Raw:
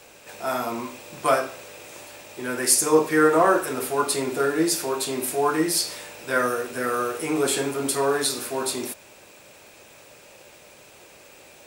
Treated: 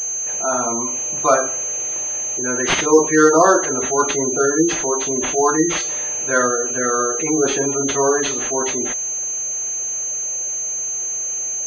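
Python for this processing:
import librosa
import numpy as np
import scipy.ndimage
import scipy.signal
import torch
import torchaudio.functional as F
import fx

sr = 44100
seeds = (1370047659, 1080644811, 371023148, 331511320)

y = fx.spec_gate(x, sr, threshold_db=-20, keep='strong')
y = fx.pwm(y, sr, carrier_hz=6300.0)
y = F.gain(torch.from_numpy(y), 5.5).numpy()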